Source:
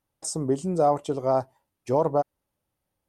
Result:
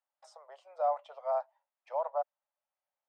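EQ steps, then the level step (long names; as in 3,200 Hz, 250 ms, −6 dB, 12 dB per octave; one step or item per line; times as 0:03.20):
Butterworth high-pass 570 Hz 72 dB per octave
high-frequency loss of the air 350 metres
−6.0 dB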